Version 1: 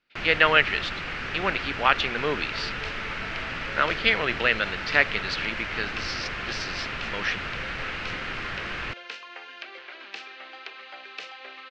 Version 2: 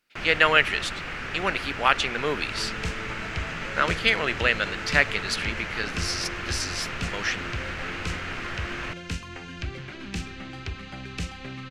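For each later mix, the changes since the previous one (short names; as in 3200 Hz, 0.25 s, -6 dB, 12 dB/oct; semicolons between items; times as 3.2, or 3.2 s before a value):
first sound: add air absorption 140 m; second sound: remove HPF 480 Hz 24 dB/oct; master: remove LPF 4600 Hz 24 dB/oct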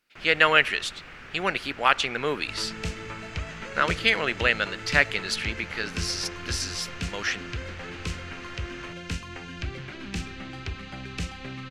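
first sound -10.5 dB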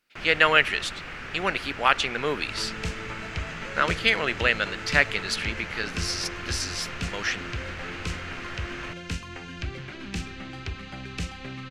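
first sound +6.5 dB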